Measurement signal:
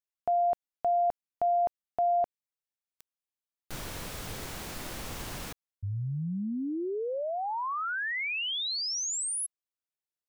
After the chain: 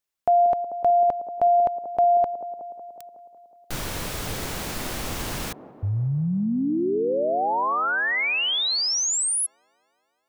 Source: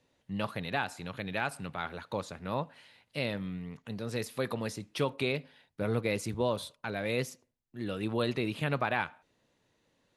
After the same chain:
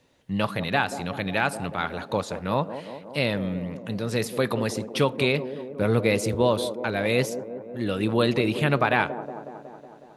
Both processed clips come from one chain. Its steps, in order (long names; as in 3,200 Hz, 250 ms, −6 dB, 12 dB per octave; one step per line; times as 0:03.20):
delay with a band-pass on its return 184 ms, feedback 68%, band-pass 400 Hz, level −9 dB
level +8.5 dB